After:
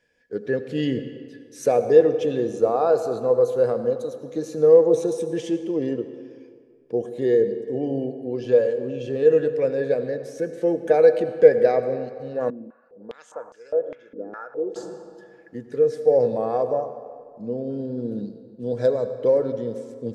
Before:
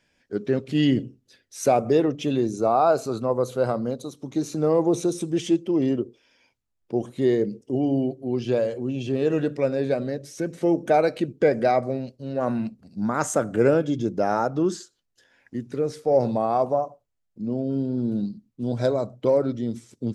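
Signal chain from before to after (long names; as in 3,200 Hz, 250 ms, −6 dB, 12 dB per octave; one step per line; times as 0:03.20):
hollow resonant body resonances 480/1,700 Hz, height 17 dB, ringing for 65 ms
convolution reverb RT60 2.0 s, pre-delay 77 ms, DRR 10 dB
0:12.50–0:14.76: band-pass on a step sequencer 4.9 Hz 290–4,900 Hz
level −5.5 dB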